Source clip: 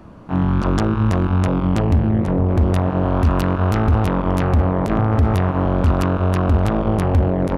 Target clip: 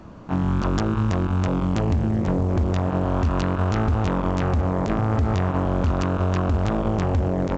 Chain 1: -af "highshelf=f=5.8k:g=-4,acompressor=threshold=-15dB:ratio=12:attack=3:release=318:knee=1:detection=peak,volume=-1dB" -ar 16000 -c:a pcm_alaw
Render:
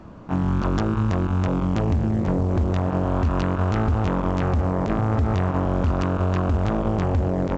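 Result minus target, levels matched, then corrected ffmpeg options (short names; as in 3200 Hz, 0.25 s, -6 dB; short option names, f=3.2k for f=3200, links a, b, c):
8000 Hz band -4.5 dB
-af "highshelf=f=5.8k:g=6.5,acompressor=threshold=-15dB:ratio=12:attack=3:release=318:knee=1:detection=peak,volume=-1dB" -ar 16000 -c:a pcm_alaw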